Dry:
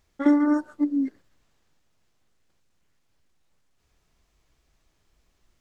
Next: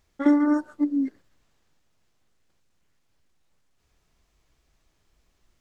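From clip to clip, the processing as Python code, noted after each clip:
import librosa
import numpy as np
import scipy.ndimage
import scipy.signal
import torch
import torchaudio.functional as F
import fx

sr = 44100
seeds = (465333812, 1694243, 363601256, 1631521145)

y = x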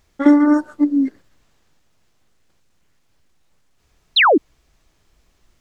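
y = fx.spec_paint(x, sr, seeds[0], shape='fall', start_s=4.16, length_s=0.22, low_hz=250.0, high_hz=4400.0, level_db=-19.0)
y = F.gain(torch.from_numpy(y), 7.5).numpy()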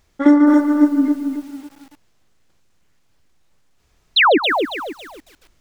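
y = x + 10.0 ** (-13.0 / 20.0) * np.pad(x, (int(147 * sr / 1000.0), 0))[:len(x)]
y = fx.echo_crushed(y, sr, ms=275, feedback_pct=35, bits=7, wet_db=-6.0)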